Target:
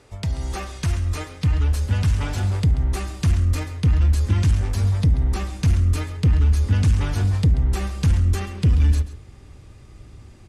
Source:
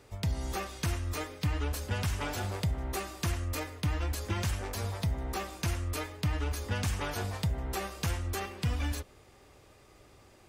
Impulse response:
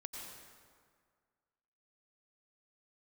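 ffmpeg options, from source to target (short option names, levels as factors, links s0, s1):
-af "asubboost=boost=5.5:cutoff=220,asoftclip=type=tanh:threshold=0.178,lowpass=f=11000:w=0.5412,lowpass=f=11000:w=1.3066,aecho=1:1:135:0.178,volume=1.68"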